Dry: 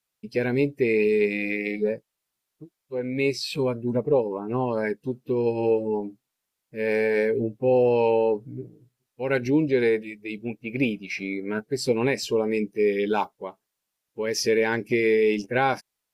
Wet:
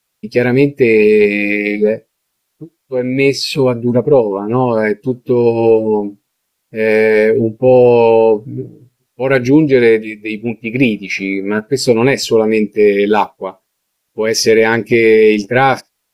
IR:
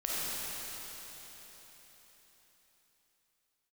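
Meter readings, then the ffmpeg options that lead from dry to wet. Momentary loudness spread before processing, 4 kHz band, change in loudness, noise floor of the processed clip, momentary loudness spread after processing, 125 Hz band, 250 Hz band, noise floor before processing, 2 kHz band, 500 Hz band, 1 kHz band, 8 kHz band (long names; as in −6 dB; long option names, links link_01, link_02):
12 LU, +12.5 dB, +12.0 dB, −70 dBFS, 12 LU, +12.5 dB, +12.0 dB, −83 dBFS, +12.0 dB, +12.0 dB, +12.0 dB, can't be measured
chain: -filter_complex "[0:a]asplit=2[link_01][link_02];[1:a]atrim=start_sample=2205,atrim=end_sample=3969[link_03];[link_02][link_03]afir=irnorm=-1:irlink=0,volume=-27dB[link_04];[link_01][link_04]amix=inputs=2:normalize=0,apsyclip=13.5dB,volume=-1.5dB"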